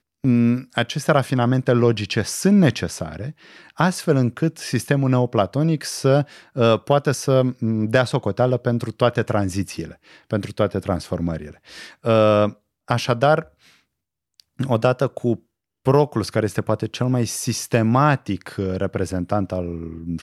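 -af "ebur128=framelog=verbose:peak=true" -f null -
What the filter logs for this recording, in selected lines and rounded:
Integrated loudness:
  I:         -20.7 LUFS
  Threshold: -31.1 LUFS
Loudness range:
  LRA:         3.2 LU
  Threshold: -41.2 LUFS
  LRA low:   -23.0 LUFS
  LRA high:  -19.8 LUFS
True peak:
  Peak:       -2.3 dBFS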